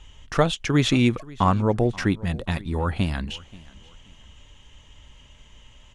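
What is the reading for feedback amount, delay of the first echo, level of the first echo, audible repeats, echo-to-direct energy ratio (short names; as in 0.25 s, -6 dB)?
35%, 0.53 s, -22.0 dB, 2, -21.5 dB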